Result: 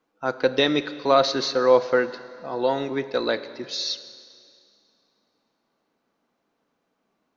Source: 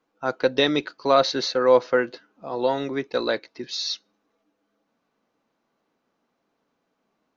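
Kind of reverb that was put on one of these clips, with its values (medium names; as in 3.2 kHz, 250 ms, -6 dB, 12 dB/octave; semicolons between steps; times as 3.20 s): Schroeder reverb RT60 2.3 s, combs from 30 ms, DRR 13 dB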